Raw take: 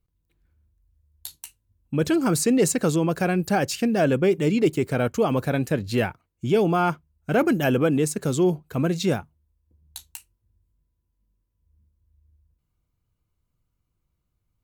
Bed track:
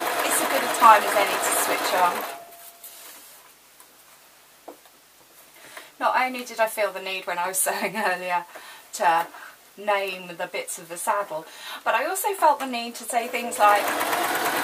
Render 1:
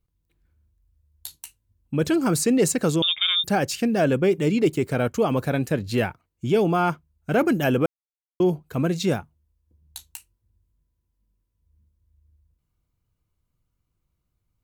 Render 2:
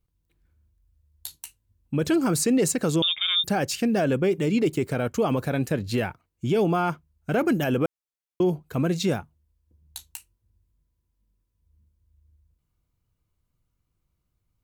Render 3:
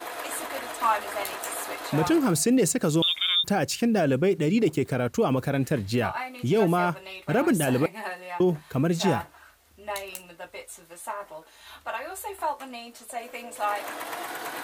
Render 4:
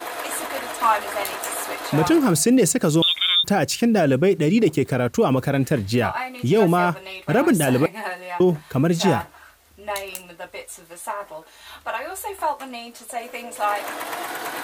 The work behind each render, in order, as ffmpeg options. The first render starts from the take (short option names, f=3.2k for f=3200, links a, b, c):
-filter_complex "[0:a]asettb=1/sr,asplit=3[a][b][c];[a]atrim=end=3.024[d];[b]atrim=start=3.02:end=3.44,asetpts=PTS-STARTPTS,afade=t=in:d=0.004:c=qsin,afade=t=out:st=0.416:d=0.004:c=qsin,lowpass=f=3.2k:t=q:w=0.5098,lowpass=f=3.2k:t=q:w=0.6013,lowpass=f=3.2k:t=q:w=0.9,lowpass=f=3.2k:t=q:w=2.563,afreqshift=-3800[e];[c]atrim=start=3.436[f];[d][e]acrossfade=d=0.004:c1=hsin:c2=qsin[g];[g][f]acrossfade=d=0.004:c1=qsin:c2=hsin,asplit=3[h][i][j];[h]atrim=end=7.86,asetpts=PTS-STARTPTS,afade=t=out:st=7.856:d=0.004:c=hsin[k];[i]atrim=start=7.86:end=8.4,asetpts=PTS-STARTPTS,volume=0[l];[j]atrim=start=8.4,asetpts=PTS-STARTPTS,afade=t=in:d=0.004:c=hsin[m];[k][l][m]concat=n=3:v=0:a=1"
-af "alimiter=limit=-14.5dB:level=0:latency=1:release=81"
-filter_complex "[1:a]volume=-10.5dB[a];[0:a][a]amix=inputs=2:normalize=0"
-af "volume=5dB"